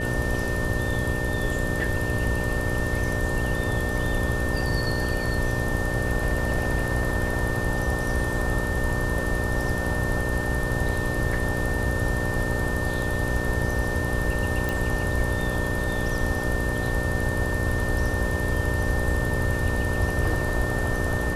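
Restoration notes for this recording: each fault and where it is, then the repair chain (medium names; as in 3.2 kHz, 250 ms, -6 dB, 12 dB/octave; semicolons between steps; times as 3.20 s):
buzz 60 Hz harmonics 10 -30 dBFS
whine 1.8 kHz -30 dBFS
14.69 s: pop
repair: de-click; de-hum 60 Hz, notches 10; band-stop 1.8 kHz, Q 30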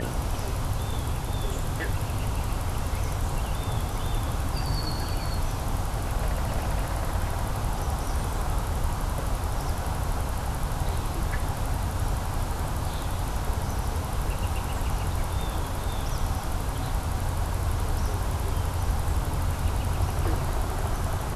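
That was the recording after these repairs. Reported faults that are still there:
nothing left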